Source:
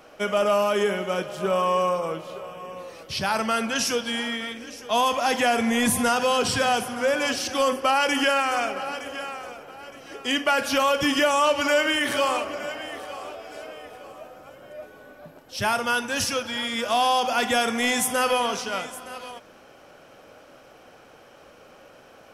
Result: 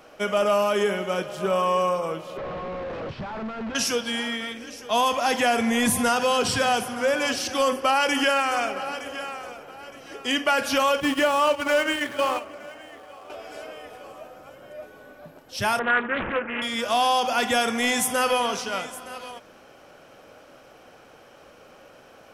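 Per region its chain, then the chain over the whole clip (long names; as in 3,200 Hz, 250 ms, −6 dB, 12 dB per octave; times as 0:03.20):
0:02.37–0:03.75: sign of each sample alone + head-to-tape spacing loss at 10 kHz 45 dB
0:11.00–0:13.30: running median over 9 samples + noise gate −26 dBFS, range −8 dB
0:15.79–0:16.62: loudspeaker in its box 190–4,800 Hz, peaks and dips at 210 Hz +5 dB, 390 Hz +8 dB, 1,500 Hz +5 dB, 2,500 Hz −8 dB, 4,200 Hz +5 dB + bad sample-rate conversion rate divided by 8×, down none, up filtered + highs frequency-modulated by the lows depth 0.34 ms
whole clip: no processing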